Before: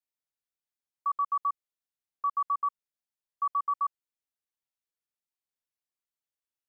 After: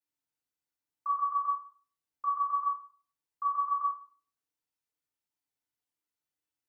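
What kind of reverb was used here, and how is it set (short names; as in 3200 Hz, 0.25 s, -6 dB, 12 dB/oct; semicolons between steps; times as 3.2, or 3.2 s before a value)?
FDN reverb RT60 0.41 s, low-frequency decay 1.45×, high-frequency decay 0.7×, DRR -6.5 dB; gain -6 dB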